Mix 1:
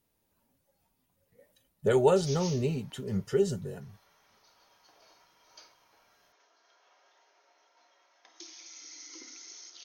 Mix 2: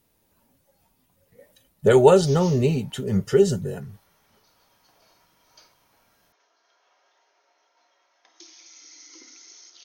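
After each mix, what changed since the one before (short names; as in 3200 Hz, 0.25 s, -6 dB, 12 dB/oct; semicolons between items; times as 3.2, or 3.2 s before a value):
speech +9.0 dB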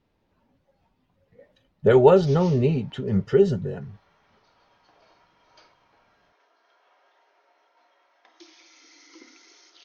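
background +4.5 dB; master: add air absorption 230 m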